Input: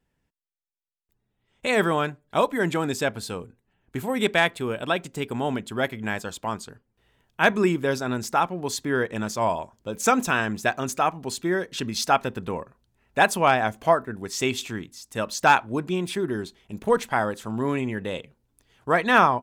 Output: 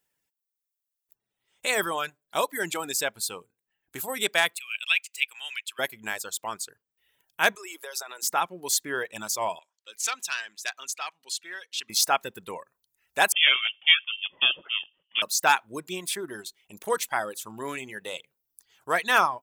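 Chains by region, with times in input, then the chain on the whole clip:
4.58–5.79 s: resonant high-pass 2.5 kHz, resonance Q 5.7 + treble shelf 4.3 kHz -6.5 dB
7.55–8.23 s: high-pass 460 Hz 24 dB/octave + compression 10:1, threshold -30 dBFS
9.59–11.90 s: band-pass filter 3.2 kHz, Q 0.96 + transformer saturation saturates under 2.5 kHz
13.32–15.22 s: bass shelf 430 Hz +7 dB + ring modulator 470 Hz + frequency inversion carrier 3.4 kHz
whole clip: RIAA curve recording; reverb removal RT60 0.77 s; peaking EQ 240 Hz -5.5 dB 0.28 oct; trim -3.5 dB

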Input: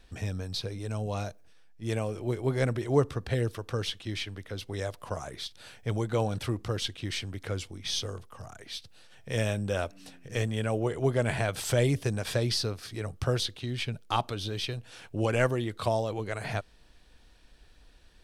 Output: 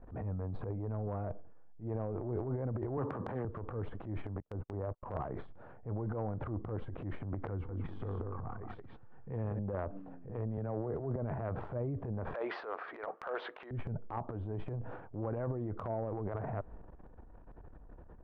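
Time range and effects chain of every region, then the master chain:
2.97–3.45 s: high-pass 120 Hz 24 dB/octave + comb of notches 690 Hz + spectrum-flattening compressor 2:1
4.40–5.03 s: gate -40 dBFS, range -46 dB + low-pass 1.6 kHz 24 dB/octave
7.51–9.59 s: peaking EQ 610 Hz -13 dB 0.33 oct + delay 178 ms -6 dB
10.57–11.16 s: distance through air 250 m + three bands expanded up and down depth 40%
12.34–13.71 s: Bessel high-pass 650 Hz, order 4 + peaking EQ 2.4 kHz +13.5 dB 2.6 oct
whole clip: low-pass 1.1 kHz 24 dB/octave; compression 8:1, threshold -36 dBFS; transient shaper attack -9 dB, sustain +11 dB; trim +2.5 dB

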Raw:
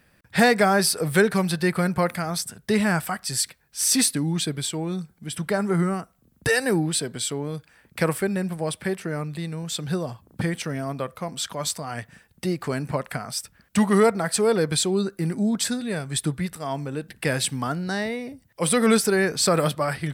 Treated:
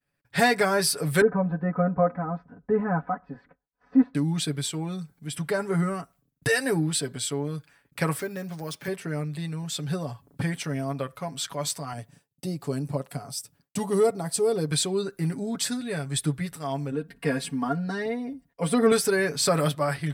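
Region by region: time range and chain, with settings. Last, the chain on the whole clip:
1.21–4.15 s: low-pass 1.2 kHz 24 dB/octave + comb 4 ms, depth 97%
8.19–8.88 s: high-pass 140 Hz + compression 1.5:1, threshold -31 dBFS + careless resampling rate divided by 3×, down none, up hold
11.93–14.71 s: high-pass 92 Hz + peaking EQ 1.8 kHz -13 dB 1.5 oct
16.91–18.92 s: treble shelf 2 kHz -11.5 dB + comb 4.3 ms, depth 86%
whole clip: expander -49 dBFS; comb 7.1 ms, depth 65%; trim -4 dB

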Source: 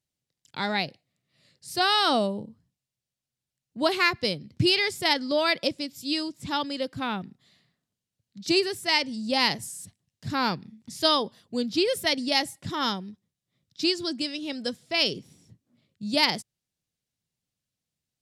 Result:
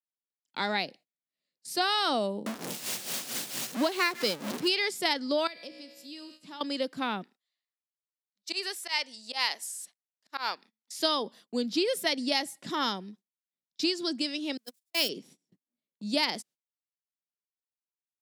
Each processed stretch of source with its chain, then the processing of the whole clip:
2.46–4.68 s: jump at every zero crossing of -23.5 dBFS + tremolo 4.4 Hz, depth 71% + peaking EQ 89 Hz -6 dB 1.2 oct
5.47–6.61 s: feedback comb 62 Hz, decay 1.4 s, mix 70% + compression 2:1, threshold -45 dBFS
7.23–10.99 s: high-pass 760 Hz + slow attack 124 ms
14.57–15.09 s: zero-crossing glitches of -22 dBFS + gate -24 dBFS, range -44 dB + bass shelf 450 Hz +3 dB
whole clip: gate -50 dBFS, range -24 dB; high-pass 210 Hz 24 dB/octave; compression 2.5:1, threshold -25 dBFS

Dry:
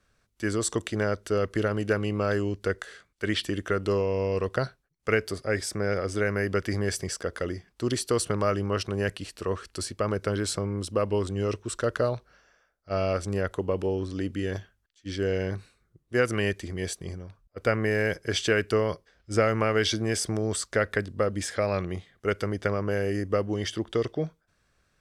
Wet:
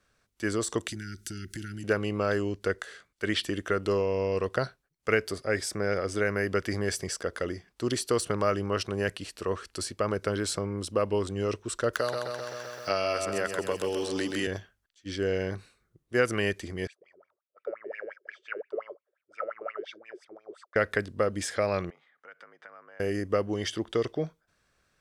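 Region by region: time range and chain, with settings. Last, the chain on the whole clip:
0.88–1.84 s: Chebyshev band-stop 370–1400 Hz, order 5 + tone controls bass +7 dB, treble +12 dB + compression, threshold -32 dBFS
11.93–14.47 s: tilt EQ +3 dB/octave + feedback delay 129 ms, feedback 48%, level -6 dB + three bands compressed up and down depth 100%
16.87–20.76 s: bass shelf 270 Hz -11 dB + wah-wah 5.7 Hz 350–2600 Hz, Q 12 + small resonant body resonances 580/1300/3600 Hz, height 7 dB, ringing for 25 ms
21.90–23.00 s: compression 4:1, threshold -39 dBFS + band-pass filter 1.3 kHz, Q 1.7 + frequency shift +60 Hz
whole clip: de-esser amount 50%; bass shelf 170 Hz -6 dB

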